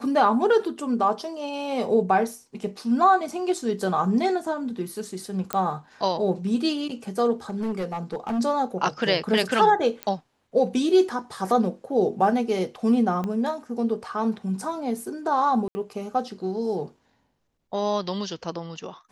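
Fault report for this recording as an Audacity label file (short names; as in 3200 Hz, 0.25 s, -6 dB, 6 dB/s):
5.530000	5.530000	pop -8 dBFS
7.500000	8.400000	clipped -23.5 dBFS
10.030000	10.030000	pop -14 dBFS
13.240000	13.240000	pop -18 dBFS
15.680000	15.750000	gap 70 ms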